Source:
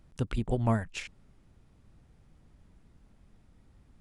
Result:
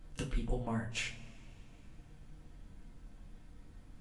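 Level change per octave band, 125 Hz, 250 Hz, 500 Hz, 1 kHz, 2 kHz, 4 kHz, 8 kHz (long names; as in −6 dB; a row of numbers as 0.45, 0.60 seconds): −9.5, −7.5, −8.0, −8.5, −0.5, +2.0, +2.0 decibels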